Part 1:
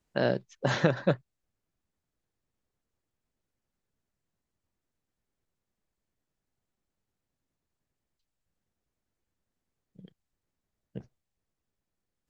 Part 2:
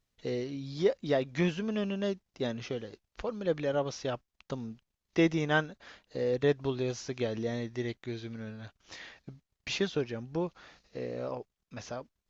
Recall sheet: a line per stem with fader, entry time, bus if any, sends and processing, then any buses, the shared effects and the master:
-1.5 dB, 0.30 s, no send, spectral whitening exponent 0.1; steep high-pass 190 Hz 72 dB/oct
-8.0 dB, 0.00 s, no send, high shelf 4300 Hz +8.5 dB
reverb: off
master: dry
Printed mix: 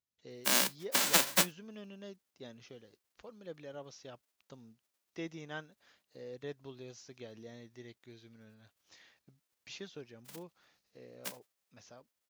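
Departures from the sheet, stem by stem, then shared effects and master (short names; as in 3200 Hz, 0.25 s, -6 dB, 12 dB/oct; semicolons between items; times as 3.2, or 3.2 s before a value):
stem 2 -8.0 dB -> -16.5 dB; master: extra HPF 83 Hz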